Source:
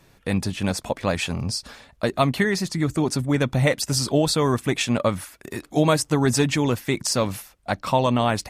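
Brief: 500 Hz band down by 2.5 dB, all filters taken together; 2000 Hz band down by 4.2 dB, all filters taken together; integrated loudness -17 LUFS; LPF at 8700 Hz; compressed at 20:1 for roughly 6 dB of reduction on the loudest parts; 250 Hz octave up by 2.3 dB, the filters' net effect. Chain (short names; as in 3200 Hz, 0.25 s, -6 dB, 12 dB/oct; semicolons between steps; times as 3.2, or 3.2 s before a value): LPF 8700 Hz; bell 250 Hz +4 dB; bell 500 Hz -4 dB; bell 2000 Hz -5 dB; compressor 20:1, threshold -20 dBFS; gain +10 dB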